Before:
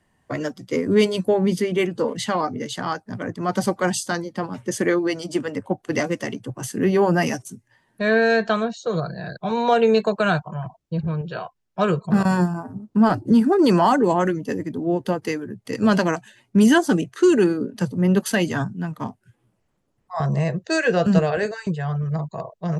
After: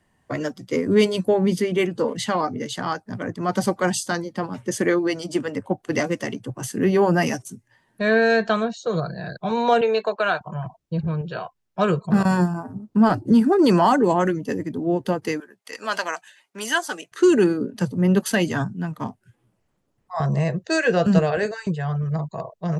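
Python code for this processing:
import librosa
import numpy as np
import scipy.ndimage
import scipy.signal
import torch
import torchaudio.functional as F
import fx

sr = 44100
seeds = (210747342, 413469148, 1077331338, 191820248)

y = fx.bandpass_edges(x, sr, low_hz=460.0, high_hz=4500.0, at=(9.81, 10.41))
y = fx.highpass(y, sr, hz=860.0, slope=12, at=(15.4, 17.12))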